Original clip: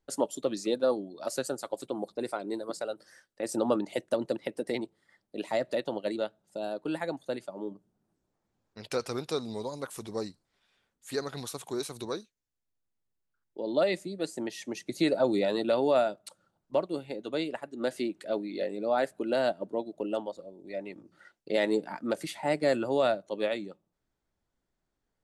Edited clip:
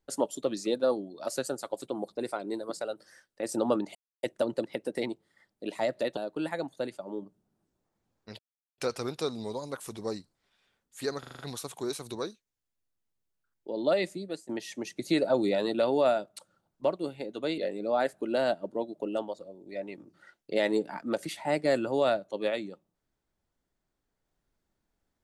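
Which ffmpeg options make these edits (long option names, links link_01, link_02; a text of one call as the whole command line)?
ffmpeg -i in.wav -filter_complex "[0:a]asplit=11[link_01][link_02][link_03][link_04][link_05][link_06][link_07][link_08][link_09][link_10][link_11];[link_01]atrim=end=3.95,asetpts=PTS-STARTPTS,afade=type=out:start_time=3.946:duration=0.004:curve=hsin,apad=pad_dur=0.28[link_12];[link_02]atrim=start=3.95:end=5.892,asetpts=PTS-STARTPTS,afade=type=in:duration=0.004:curve=hsin[link_13];[link_03]atrim=start=6.658:end=8.88,asetpts=PTS-STARTPTS,afade=type=out:start_time=2.218:duration=0.004:curve=hsin,apad=pad_dur=0.39[link_14];[link_04]atrim=start=8.88:end=11.332,asetpts=PTS-STARTPTS,afade=type=in:duration=0.004:curve=hsin[link_15];[link_05]atrim=start=11.288:end=11.332[link_16];[link_06]atrim=start=11.288:end=11.332[link_17];[link_07]atrim=start=11.288:end=11.332[link_18];[link_08]atrim=start=11.288:end=11.332[link_19];[link_09]atrim=start=11.288:end=14.39,asetpts=PTS-STARTPTS,afade=type=out:start_time=2.822:duration=0.28:silence=0.141254[link_20];[link_10]atrim=start=14.39:end=17.482,asetpts=PTS-STARTPTS,afade=type=in:duration=0.004:curve=hsin:silence=0.141254[link_21];[link_11]atrim=start=18.558[link_22];[link_12][link_13]concat=n=2:v=0:a=1[link_23];[link_14][link_15]concat=n=2:v=0:a=1[link_24];[link_23][link_24]acrossfade=duration=0.004:curve1=hsin:curve2=hsin[link_25];[link_25][link_16]acrossfade=duration=0.004:curve1=hsin:curve2=hsin[link_26];[link_26][link_17]acrossfade=duration=0.004:curve1=hsin:curve2=hsin[link_27];[link_27][link_18]acrossfade=duration=0.004:curve1=hsin:curve2=hsin[link_28];[link_28][link_19]acrossfade=duration=0.004:curve1=hsin:curve2=hsin[link_29];[link_20][link_21]concat=n=2:v=0:a=1[link_30];[link_29][link_30]acrossfade=duration=0.004:curve1=hsin:curve2=hsin[link_31];[link_31][link_22]acrossfade=duration=0.004:curve1=hsin:curve2=hsin" out.wav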